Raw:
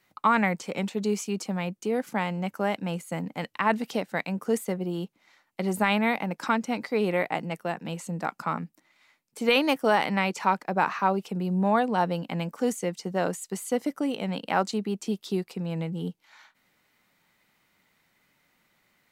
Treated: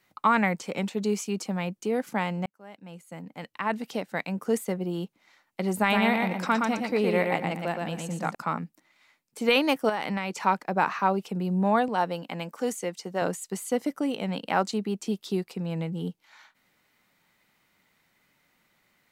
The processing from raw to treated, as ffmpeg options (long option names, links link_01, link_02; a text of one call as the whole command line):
ffmpeg -i in.wav -filter_complex "[0:a]asettb=1/sr,asplit=3[link_01][link_02][link_03];[link_01]atrim=end=5.784[link_04];[link_02]atrim=start=5.78:end=8.35,asetpts=PTS-STARTPTS,afade=type=in:duration=0.004:curve=qsin,afade=type=out:start_time=2.566:duration=0.004:curve=qsin,aecho=1:1:118|236|354|472:0.668|0.18|0.0487|0.0132,atrim=end_sample=113337[link_05];[link_03]atrim=start=8.346[link_06];[link_04][link_05]acrossfade=duration=0.004:curve1=hsin:curve2=qsin[link_07];[link_07][link_06]acrossfade=duration=0.004:curve1=qsin:curve2=hsin,asettb=1/sr,asplit=3[link_08][link_09][link_10];[link_08]atrim=end=9.894[link_11];[link_09]atrim=start=9.89:end=10.43,asetpts=PTS-STARTPTS,afade=type=in:duration=0.004:curve=qsin,afade=type=out:start_time=0.536:duration=0.004:curve=qsin,acompressor=threshold=-25dB:ratio=4:attack=3.2:release=140:knee=1:detection=peak[link_12];[link_10]atrim=start=10.426[link_13];[link_11][link_12]acrossfade=duration=0.004:curve1=hsin:curve2=qsin[link_14];[link_14][link_13]acrossfade=duration=0.004:curve1=qsin:curve2=hsin,asettb=1/sr,asplit=3[link_15][link_16][link_17];[link_15]atrim=end=11.884[link_18];[link_16]atrim=start=11.88:end=13.22,asetpts=PTS-STARTPTS,afade=type=in:duration=0.004:curve=qsin,afade=type=out:start_time=1.336:duration=0.004:curve=qsin,highpass=frequency=330:poles=1[link_19];[link_17]atrim=start=13.216[link_20];[link_18][link_19]acrossfade=duration=0.004:curve1=hsin:curve2=qsin[link_21];[link_21][link_20]acrossfade=duration=0.004:curve1=qsin:curve2=hsin,asplit=2[link_22][link_23];[link_22]atrim=end=2.46,asetpts=PTS-STARTPTS,afade=type=out:start_time=2.456:duration=0.004:curve=hsin[link_24];[link_23]atrim=start=2.46,asetpts=PTS-STARTPTS,afade=type=in:duration=2.03[link_25];[link_24][link_25]concat=n=2:v=0:a=1" out.wav